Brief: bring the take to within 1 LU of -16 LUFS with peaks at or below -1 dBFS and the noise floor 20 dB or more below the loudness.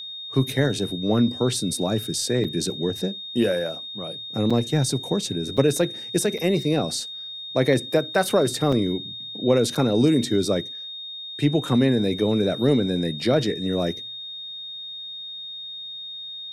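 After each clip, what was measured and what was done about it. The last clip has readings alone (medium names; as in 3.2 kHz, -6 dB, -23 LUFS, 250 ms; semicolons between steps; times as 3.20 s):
dropouts 6; longest dropout 5.2 ms; steady tone 3.7 kHz; tone level -33 dBFS; loudness -24.0 LUFS; peak level -5.5 dBFS; loudness target -16.0 LUFS
-> interpolate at 2.44/4.50/5.57/6.38/8.72/9.75 s, 5.2 ms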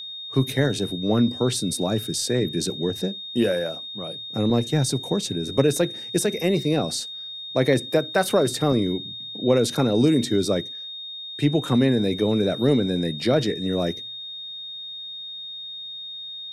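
dropouts 0; steady tone 3.7 kHz; tone level -33 dBFS
-> band-stop 3.7 kHz, Q 30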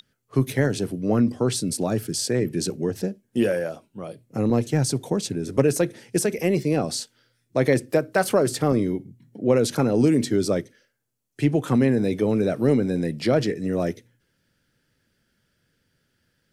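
steady tone not found; loudness -23.5 LUFS; peak level -5.5 dBFS; loudness target -16.0 LUFS
-> trim +7.5 dB; peak limiter -1 dBFS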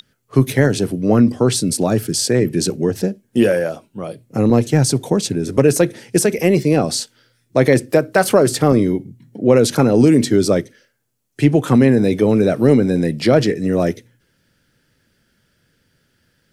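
loudness -16.0 LUFS; peak level -1.0 dBFS; noise floor -64 dBFS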